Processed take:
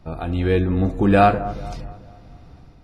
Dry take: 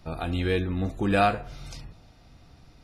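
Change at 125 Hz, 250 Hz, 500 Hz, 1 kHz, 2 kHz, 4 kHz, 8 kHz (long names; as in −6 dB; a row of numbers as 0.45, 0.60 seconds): +8.0 dB, +8.5 dB, +8.0 dB, +7.5 dB, +3.5 dB, −0.5 dB, can't be measured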